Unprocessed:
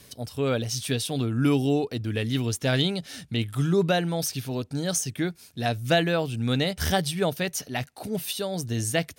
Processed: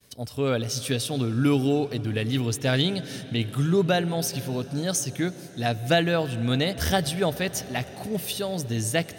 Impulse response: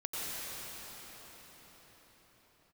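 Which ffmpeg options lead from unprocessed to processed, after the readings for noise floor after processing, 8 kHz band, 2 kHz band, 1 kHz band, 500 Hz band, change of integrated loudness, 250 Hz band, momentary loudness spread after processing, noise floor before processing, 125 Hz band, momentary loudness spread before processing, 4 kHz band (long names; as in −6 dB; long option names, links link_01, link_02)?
−42 dBFS, +0.5 dB, +0.5 dB, +1.0 dB, +1.0 dB, +1.0 dB, +1.0 dB, 8 LU, −52 dBFS, +1.0 dB, 8 LU, +0.5 dB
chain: -filter_complex "[0:a]agate=range=-33dB:threshold=-45dB:ratio=3:detection=peak,asplit=2[link_01][link_02];[1:a]atrim=start_sample=2205,highshelf=frequency=5700:gain=-8.5[link_03];[link_02][link_03]afir=irnorm=-1:irlink=0,volume=-18dB[link_04];[link_01][link_04]amix=inputs=2:normalize=0"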